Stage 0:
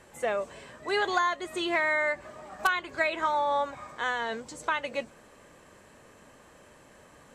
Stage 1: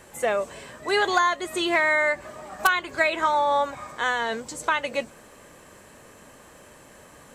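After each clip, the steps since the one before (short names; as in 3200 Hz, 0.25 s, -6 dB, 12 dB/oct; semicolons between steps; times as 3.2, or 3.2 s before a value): high shelf 9800 Hz +11 dB; gain +5 dB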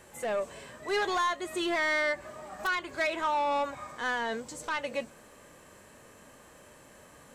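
soft clip -20 dBFS, distortion -11 dB; harmonic-percussive split harmonic +5 dB; gain -8 dB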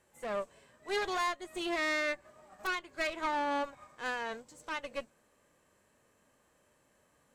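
added harmonics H 2 -7 dB, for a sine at -22.5 dBFS; upward expander 1.5:1, over -48 dBFS; gain -4.5 dB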